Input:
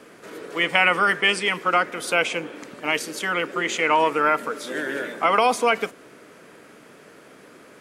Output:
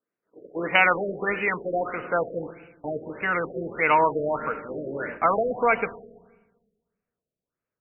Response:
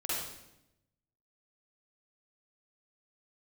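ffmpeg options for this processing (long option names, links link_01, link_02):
-filter_complex "[0:a]asubboost=boost=9.5:cutoff=87,agate=range=-42dB:threshold=-35dB:ratio=16:detection=peak,aexciter=amount=10.8:drive=1.1:freq=5800,asplit=2[link_01][link_02];[1:a]atrim=start_sample=2205,asetrate=31311,aresample=44100,lowshelf=frequency=280:gain=8.5[link_03];[link_02][link_03]afir=irnorm=-1:irlink=0,volume=-23dB[link_04];[link_01][link_04]amix=inputs=2:normalize=0,afftfilt=real='re*lt(b*sr/1024,660*pow(3000/660,0.5+0.5*sin(2*PI*1.6*pts/sr)))':imag='im*lt(b*sr/1024,660*pow(3000/660,0.5+0.5*sin(2*PI*1.6*pts/sr)))':win_size=1024:overlap=0.75"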